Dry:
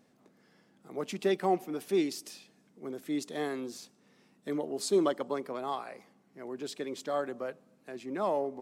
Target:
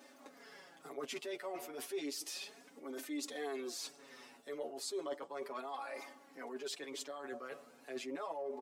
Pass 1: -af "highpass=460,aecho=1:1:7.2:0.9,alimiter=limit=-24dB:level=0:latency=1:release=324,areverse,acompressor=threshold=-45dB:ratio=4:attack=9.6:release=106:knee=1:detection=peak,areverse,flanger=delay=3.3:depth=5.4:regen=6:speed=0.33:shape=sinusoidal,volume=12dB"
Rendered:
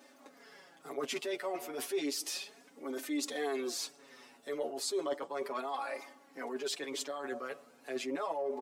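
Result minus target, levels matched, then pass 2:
downward compressor: peak gain reduction −6 dB
-af "highpass=460,aecho=1:1:7.2:0.9,alimiter=limit=-24dB:level=0:latency=1:release=324,areverse,acompressor=threshold=-53dB:ratio=4:attack=9.6:release=106:knee=1:detection=peak,areverse,flanger=delay=3.3:depth=5.4:regen=6:speed=0.33:shape=sinusoidal,volume=12dB"

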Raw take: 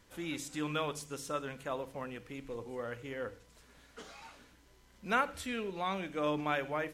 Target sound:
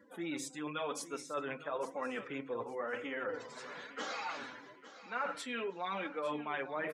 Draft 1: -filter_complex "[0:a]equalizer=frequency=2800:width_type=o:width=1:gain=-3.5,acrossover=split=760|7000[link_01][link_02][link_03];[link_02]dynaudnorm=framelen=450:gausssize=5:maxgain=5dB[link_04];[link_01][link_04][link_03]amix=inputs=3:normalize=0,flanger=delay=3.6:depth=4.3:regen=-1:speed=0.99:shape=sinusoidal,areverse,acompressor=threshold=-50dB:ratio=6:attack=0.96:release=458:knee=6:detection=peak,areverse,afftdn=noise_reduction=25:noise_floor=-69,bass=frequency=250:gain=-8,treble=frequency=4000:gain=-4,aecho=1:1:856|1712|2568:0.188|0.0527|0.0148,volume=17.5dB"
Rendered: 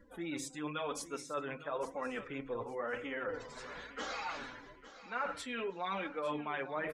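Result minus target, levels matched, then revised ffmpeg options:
125 Hz band +3.0 dB
-filter_complex "[0:a]highpass=150,equalizer=frequency=2800:width_type=o:width=1:gain=-3.5,acrossover=split=760|7000[link_01][link_02][link_03];[link_02]dynaudnorm=framelen=450:gausssize=5:maxgain=5dB[link_04];[link_01][link_04][link_03]amix=inputs=3:normalize=0,flanger=delay=3.6:depth=4.3:regen=-1:speed=0.99:shape=sinusoidal,areverse,acompressor=threshold=-50dB:ratio=6:attack=0.96:release=458:knee=6:detection=peak,areverse,afftdn=noise_reduction=25:noise_floor=-69,bass=frequency=250:gain=-8,treble=frequency=4000:gain=-4,aecho=1:1:856|1712|2568:0.188|0.0527|0.0148,volume=17.5dB"

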